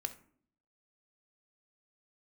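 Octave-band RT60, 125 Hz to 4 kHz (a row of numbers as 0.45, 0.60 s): 0.75, 0.80, 0.60, 0.50, 0.45, 0.25 s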